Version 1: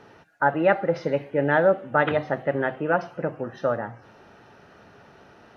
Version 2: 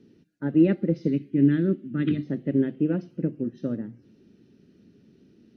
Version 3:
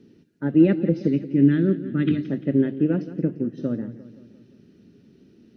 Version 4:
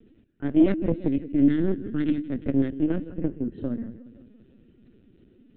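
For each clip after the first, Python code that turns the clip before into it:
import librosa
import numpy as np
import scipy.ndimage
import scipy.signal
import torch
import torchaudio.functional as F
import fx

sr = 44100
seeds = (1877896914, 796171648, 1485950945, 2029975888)

y1 = fx.spec_box(x, sr, start_s=1.09, length_s=1.17, low_hz=420.0, high_hz=1100.0, gain_db=-11)
y1 = fx.curve_eq(y1, sr, hz=(100.0, 150.0, 230.0, 350.0, 780.0, 1300.0, 2200.0, 4500.0, 6600.0), db=(0, 5, 11, 6, -25, -21, -10, -2, -4))
y1 = fx.upward_expand(y1, sr, threshold_db=-35.0, expansion=1.5)
y1 = y1 * librosa.db_to_amplitude(2.5)
y2 = fx.echo_feedback(y1, sr, ms=173, feedback_pct=54, wet_db=-15.0)
y2 = y2 * librosa.db_to_amplitude(3.0)
y3 = fx.tracing_dist(y2, sr, depth_ms=0.19)
y3 = fx.lpc_vocoder(y3, sr, seeds[0], excitation='pitch_kept', order=16)
y3 = y3 * librosa.db_to_amplitude(-3.0)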